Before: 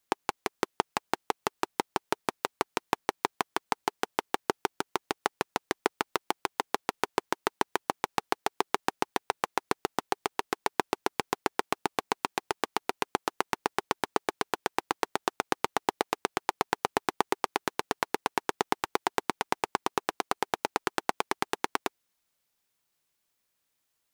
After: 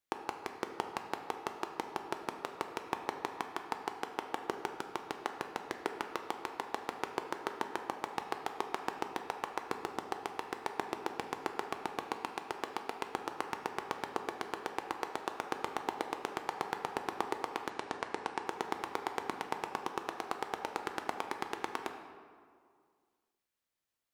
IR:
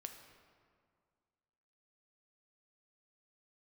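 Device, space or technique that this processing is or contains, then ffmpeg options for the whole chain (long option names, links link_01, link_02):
swimming-pool hall: -filter_complex "[1:a]atrim=start_sample=2205[link_01];[0:a][link_01]afir=irnorm=-1:irlink=0,highshelf=frequency=4400:gain=-5,asettb=1/sr,asplit=3[link_02][link_03][link_04];[link_02]atrim=end=17.704[link_05];[link_03]atrim=start=17.7:end=18.47,asetpts=PTS-STARTPTS,afade=type=in:duration=0.004:curve=qsin,afade=type=out:start_time=0.766:duration=0.004:curve=qsin,lowpass=frequency=9700:width=0.5412,lowpass=frequency=9700:width=1.3066[link_06];[link_04]atrim=start=18.466[link_07];[link_05][link_06]acrossfade=duration=0.004:curve1=hsin:curve2=qsin[link_08];[link_08][link_07]acrossfade=duration=0.004:curve1=qsin:curve2=hsin,volume=-2.5dB"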